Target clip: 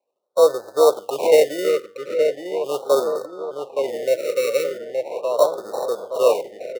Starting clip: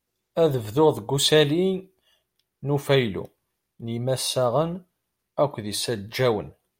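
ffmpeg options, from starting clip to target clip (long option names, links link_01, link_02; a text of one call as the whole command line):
ffmpeg -i in.wav -filter_complex "[0:a]acrusher=samples=27:mix=1:aa=0.000001,highpass=frequency=520:width_type=q:width=4.3,asplit=2[link_01][link_02];[link_02]adelay=870,lowpass=frequency=3000:poles=1,volume=-5dB,asplit=2[link_03][link_04];[link_04]adelay=870,lowpass=frequency=3000:poles=1,volume=0.54,asplit=2[link_05][link_06];[link_06]adelay=870,lowpass=frequency=3000:poles=1,volume=0.54,asplit=2[link_07][link_08];[link_08]adelay=870,lowpass=frequency=3000:poles=1,volume=0.54,asplit=2[link_09][link_10];[link_10]adelay=870,lowpass=frequency=3000:poles=1,volume=0.54,asplit=2[link_11][link_12];[link_12]adelay=870,lowpass=frequency=3000:poles=1,volume=0.54,asplit=2[link_13][link_14];[link_14]adelay=870,lowpass=frequency=3000:poles=1,volume=0.54[link_15];[link_03][link_05][link_07][link_09][link_11][link_13][link_15]amix=inputs=7:normalize=0[link_16];[link_01][link_16]amix=inputs=2:normalize=0,afftfilt=real='re*(1-between(b*sr/1024,810*pow(2600/810,0.5+0.5*sin(2*PI*0.39*pts/sr))/1.41,810*pow(2600/810,0.5+0.5*sin(2*PI*0.39*pts/sr))*1.41))':imag='im*(1-between(b*sr/1024,810*pow(2600/810,0.5+0.5*sin(2*PI*0.39*pts/sr))/1.41,810*pow(2600/810,0.5+0.5*sin(2*PI*0.39*pts/sr))*1.41))':win_size=1024:overlap=0.75,volume=-3dB" out.wav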